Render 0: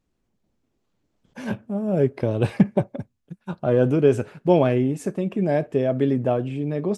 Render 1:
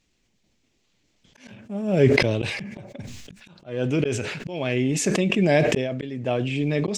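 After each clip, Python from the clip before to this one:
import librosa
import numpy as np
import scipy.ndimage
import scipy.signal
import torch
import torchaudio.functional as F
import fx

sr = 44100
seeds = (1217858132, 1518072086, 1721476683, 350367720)

y = fx.band_shelf(x, sr, hz=3800.0, db=12.5, octaves=2.3)
y = fx.auto_swell(y, sr, attack_ms=559.0)
y = fx.sustainer(y, sr, db_per_s=34.0)
y = F.gain(torch.from_numpy(y), 2.0).numpy()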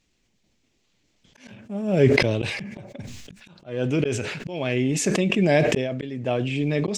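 y = x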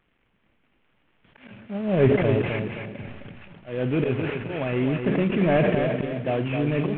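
y = fx.cvsd(x, sr, bps=16000)
y = fx.echo_feedback(y, sr, ms=261, feedback_pct=29, wet_db=-6.0)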